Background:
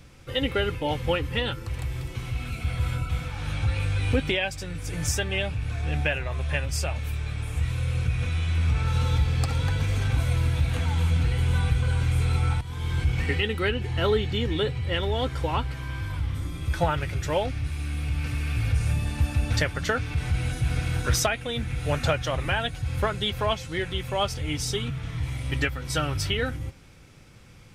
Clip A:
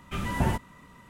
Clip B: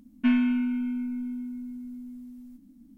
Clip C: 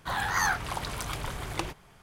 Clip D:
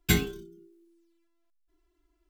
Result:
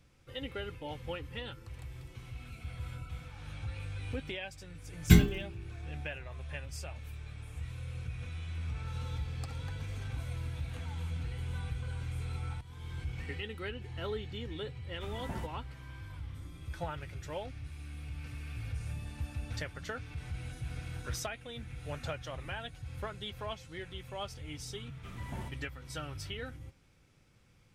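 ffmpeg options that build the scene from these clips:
-filter_complex "[1:a]asplit=2[a][b];[0:a]volume=-14.5dB[c];[4:a]bass=f=250:g=11,treble=f=4k:g=-3,atrim=end=2.29,asetpts=PTS-STARTPTS,volume=-3.5dB,afade=t=in:d=0.004:c=hsin,afade=t=out:st=2.286:d=0.004:c=hsin,adelay=220941S[d];[a]atrim=end=1.09,asetpts=PTS-STARTPTS,volume=-14dB,afade=t=in:d=0.004:c=hsin,afade=t=out:st=1.086:d=0.004:c=hsin,adelay=14890[e];[b]atrim=end=1.09,asetpts=PTS-STARTPTS,volume=-16.5dB,afade=t=in:d=0.004:c=hsin,afade=t=out:st=1.086:d=0.004:c=hsin,adelay=24920[f];[c][d][e][f]amix=inputs=4:normalize=0"

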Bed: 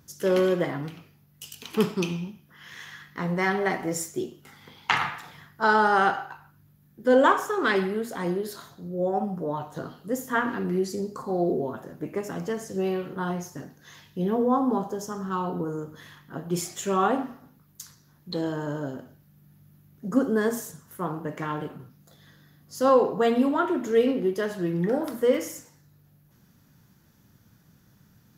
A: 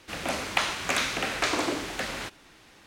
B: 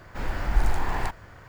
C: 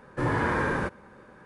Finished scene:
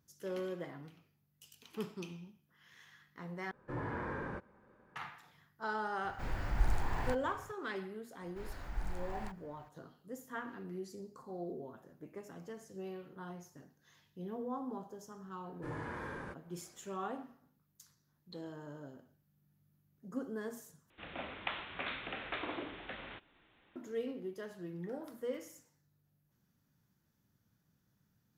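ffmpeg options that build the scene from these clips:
-filter_complex "[3:a]asplit=2[a][b];[2:a]asplit=2[c][d];[0:a]volume=-17.5dB[e];[a]lowpass=f=1.8k:p=1[f];[c]equalizer=f=110:w=1.1:g=5[g];[1:a]aresample=8000,aresample=44100[h];[e]asplit=3[i][j][k];[i]atrim=end=3.514[l];[f]atrim=end=1.45,asetpts=PTS-STARTPTS,volume=-13dB[m];[j]atrim=start=4.956:end=20.904[n];[h]atrim=end=2.86,asetpts=PTS-STARTPTS,volume=-13dB[o];[k]atrim=start=23.756[p];[g]atrim=end=1.48,asetpts=PTS-STARTPTS,volume=-9.5dB,afade=t=in:d=0.004:c=hsin,afade=t=out:st=1.476:d=0.004:c=hsin,adelay=6040[q];[d]atrim=end=1.48,asetpts=PTS-STARTPTS,volume=-17dB,afade=t=in:d=0.004:c=hsin,afade=t=out:st=1.476:d=0.004:c=hsin,adelay=8210[r];[b]atrim=end=1.45,asetpts=PTS-STARTPTS,volume=-17dB,afade=t=in:d=0.004:c=hsin,afade=t=out:st=1.446:d=0.004:c=hsin,adelay=15450[s];[l][m]acrossfade=d=0.004:c1=hsin:c2=hsin[t];[t][n]acrossfade=d=0.004:c1=hsin:c2=hsin[u];[u][o]acrossfade=d=0.004:c1=hsin:c2=hsin[v];[v][p]acrossfade=d=0.004:c1=hsin:c2=hsin[w];[w][q][r][s]amix=inputs=4:normalize=0"

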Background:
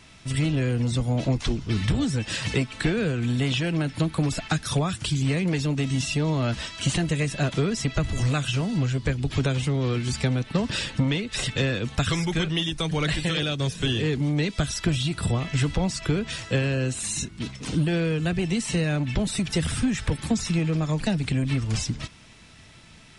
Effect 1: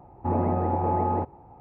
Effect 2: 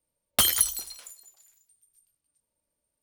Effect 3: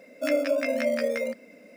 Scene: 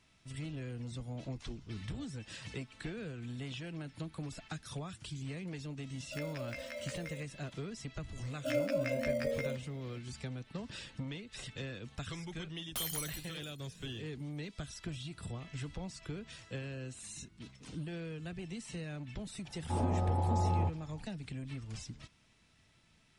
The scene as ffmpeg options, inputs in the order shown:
-filter_complex "[3:a]asplit=2[a][b];[0:a]volume=-18dB[c];[a]highpass=f=1.1k:p=1[d];[2:a]asoftclip=type=hard:threshold=-20.5dB[e];[1:a]asubboost=boost=11.5:cutoff=130[f];[d]atrim=end=1.76,asetpts=PTS-STARTPTS,volume=-12.5dB,afade=t=in:d=0.004:c=hsin,afade=t=out:st=1.756:d=0.004:c=hsin,adelay=5900[g];[b]atrim=end=1.76,asetpts=PTS-STARTPTS,volume=-8.5dB,afade=t=in:d=0.004:c=hsin,afade=t=out:st=1.756:d=0.004:c=hsin,adelay=8230[h];[e]atrim=end=3.02,asetpts=PTS-STARTPTS,volume=-13dB,afade=t=in:d=0.004:c=hsin,afade=t=out:st=3.016:d=0.004:c=hsin,adelay=12370[i];[f]atrim=end=1.6,asetpts=PTS-STARTPTS,volume=-9.5dB,afade=t=in:d=0.004:c=hsin,afade=t=out:st=1.596:d=0.004:c=hsin,adelay=19450[j];[c][g][h][i][j]amix=inputs=5:normalize=0"

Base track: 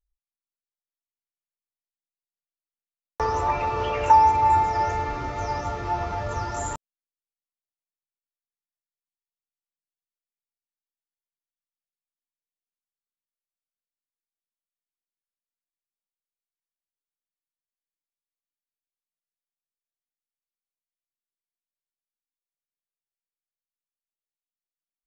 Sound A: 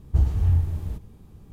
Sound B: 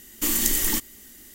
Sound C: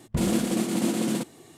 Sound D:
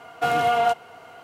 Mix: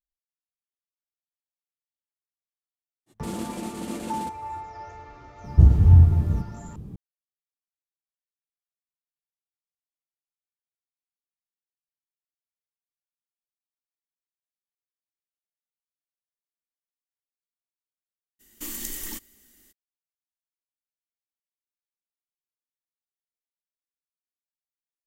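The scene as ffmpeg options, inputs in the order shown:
-filter_complex "[0:a]volume=-16.5dB[a];[1:a]equalizer=f=180:w=0.38:g=13.5[b];[3:a]atrim=end=1.57,asetpts=PTS-STARTPTS,volume=-8.5dB,afade=t=in:d=0.05,afade=t=out:st=1.52:d=0.05,adelay=3060[c];[b]atrim=end=1.52,asetpts=PTS-STARTPTS,volume=-2dB,afade=t=in:d=0.004:c=hsin,afade=t=out:st=1.516:d=0.004:c=hsin,adelay=5440[d];[2:a]atrim=end=1.34,asetpts=PTS-STARTPTS,volume=-11.5dB,afade=t=in:d=0.02,afade=t=out:st=1.32:d=0.02,adelay=18390[e];[a][c][d][e]amix=inputs=4:normalize=0"

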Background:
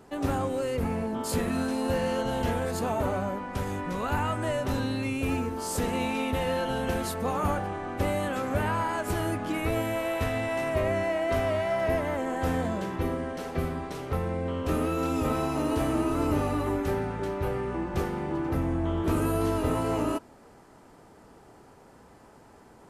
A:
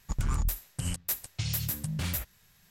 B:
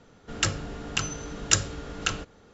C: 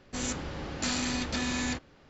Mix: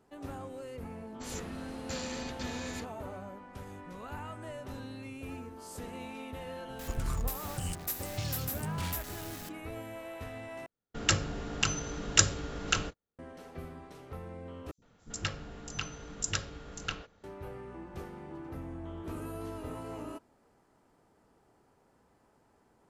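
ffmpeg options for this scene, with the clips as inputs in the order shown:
-filter_complex "[2:a]asplit=2[a][b];[0:a]volume=-14dB[c];[1:a]aeval=exprs='val(0)+0.5*0.0188*sgn(val(0))':c=same[d];[a]agate=range=-37dB:threshold=-47dB:ratio=16:release=100:detection=peak[e];[b]acrossover=split=360|5800[f][g][h];[f]adelay=70[i];[g]adelay=110[j];[i][j][h]amix=inputs=3:normalize=0[k];[c]asplit=3[l][m][n];[l]atrim=end=10.664[o];[e]atrim=end=2.53,asetpts=PTS-STARTPTS,volume=-1dB[p];[m]atrim=start=13.186:end=14.714[q];[k]atrim=end=2.53,asetpts=PTS-STARTPTS,volume=-8dB[r];[n]atrim=start=17.236[s];[3:a]atrim=end=2.09,asetpts=PTS-STARTPTS,volume=-9.5dB,afade=t=in:d=0.004:c=hsin,afade=t=out:st=2.086:d=0.004:c=hsin,adelay=1070[t];[d]atrim=end=2.7,asetpts=PTS-STARTPTS,volume=-6dB,afade=t=in:d=0.004:c=hsin,afade=t=out:st=2.696:d=0.004:c=hsin,adelay=6790[u];[o][p]acrossfade=d=0.004:c1=hsin:c2=hsin[v];[v][q]acrossfade=d=0.004:c1=hsin:c2=hsin[w];[w][r]acrossfade=d=0.004:c1=hsin:c2=hsin[x];[x][s]acrossfade=d=0.004:c1=hsin:c2=hsin[y];[y][t][u]amix=inputs=3:normalize=0"

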